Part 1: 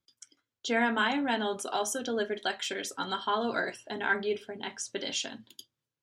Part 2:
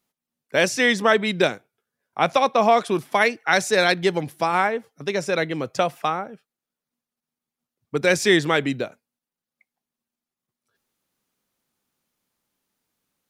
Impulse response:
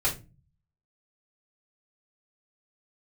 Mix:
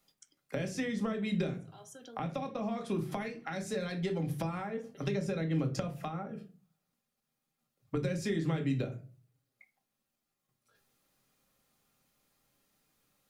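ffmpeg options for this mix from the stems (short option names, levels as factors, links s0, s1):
-filter_complex "[0:a]acompressor=threshold=0.01:ratio=6,volume=0.376,asplit=2[s0][s1];[s1]volume=0.075[s2];[1:a]acompressor=threshold=0.0398:ratio=2.5,volume=0.891,asplit=3[s3][s4][s5];[s4]volume=0.376[s6];[s5]apad=whole_len=265847[s7];[s0][s7]sidechaincompress=threshold=0.00794:ratio=8:attack=27:release=356[s8];[2:a]atrim=start_sample=2205[s9];[s2][s6]amix=inputs=2:normalize=0[s10];[s10][s9]afir=irnorm=-1:irlink=0[s11];[s8][s3][s11]amix=inputs=3:normalize=0,acrossover=split=290[s12][s13];[s13]acompressor=threshold=0.0112:ratio=8[s14];[s12][s14]amix=inputs=2:normalize=0"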